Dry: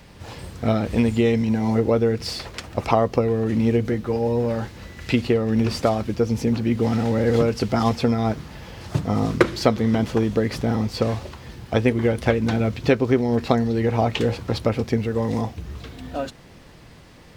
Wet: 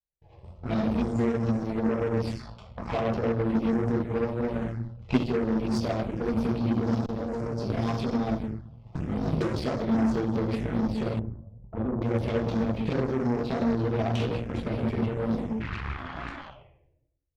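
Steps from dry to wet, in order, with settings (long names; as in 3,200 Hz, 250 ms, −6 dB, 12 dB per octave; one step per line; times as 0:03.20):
0:15.60–0:16.47: sound drawn into the spectrogram noise 310–3,500 Hz −29 dBFS
noise gate −35 dBFS, range −43 dB
low-shelf EQ 130 Hz +6 dB
rectangular room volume 200 cubic metres, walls mixed, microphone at 1.4 metres
low-pass that shuts in the quiet parts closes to 1,700 Hz, open at −9 dBFS
phaser swept by the level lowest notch 210 Hz, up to 3,200 Hz, full sweep at −7 dBFS
brickwall limiter −8.5 dBFS, peak gain reduction 8 dB
flanger 1.1 Hz, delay 3.2 ms, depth 7.2 ms, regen −39%
0:07.06–0:07.70: output level in coarse steps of 23 dB
0:11.19–0:12.02: drawn EQ curve 140 Hz 0 dB, 530 Hz −4 dB, 4,200 Hz −29 dB
harmonic generator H 3 −17 dB, 8 −22 dB, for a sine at −9.5 dBFS
0:04.52–0:05.19: transient designer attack +7 dB, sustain +3 dB
level −4.5 dB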